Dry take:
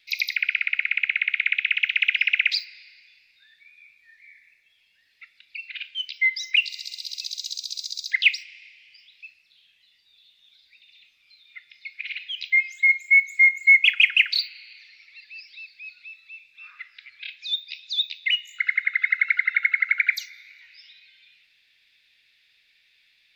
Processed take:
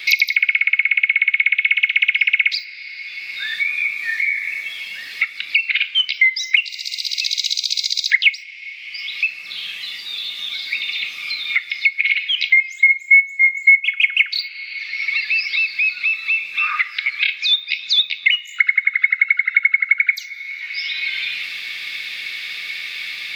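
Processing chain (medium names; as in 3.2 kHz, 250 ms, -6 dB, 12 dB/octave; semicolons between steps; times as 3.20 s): small resonant body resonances 1.2/2.2 kHz, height 14 dB, ringing for 65 ms; three bands compressed up and down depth 100%; trim +2 dB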